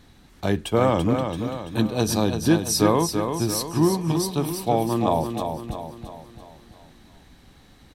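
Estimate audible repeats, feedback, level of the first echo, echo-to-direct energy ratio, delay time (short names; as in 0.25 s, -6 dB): 5, 49%, -6.5 dB, -5.5 dB, 0.336 s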